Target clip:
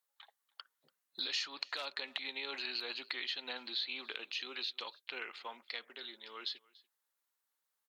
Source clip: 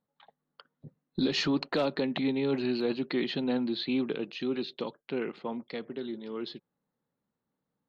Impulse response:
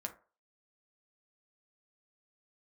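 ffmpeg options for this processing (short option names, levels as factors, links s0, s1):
-filter_complex "[0:a]highpass=1300,acompressor=threshold=0.01:ratio=6,aemphasis=mode=production:type=cd,asplit=2[s0][s1];[s1]aecho=0:1:288:0.0631[s2];[s0][s2]amix=inputs=2:normalize=0,volume=1.33"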